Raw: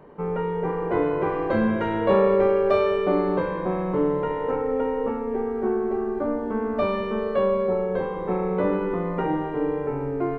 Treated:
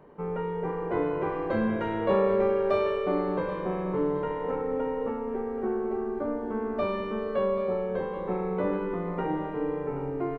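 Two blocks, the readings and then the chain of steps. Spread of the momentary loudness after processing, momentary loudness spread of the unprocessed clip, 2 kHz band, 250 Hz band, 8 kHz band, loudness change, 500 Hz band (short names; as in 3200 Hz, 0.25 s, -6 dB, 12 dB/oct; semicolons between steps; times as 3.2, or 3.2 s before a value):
7 LU, 7 LU, -5.0 dB, -5.0 dB, n/a, -5.0 dB, -5.0 dB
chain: echo 0.78 s -14.5 dB; gain -5 dB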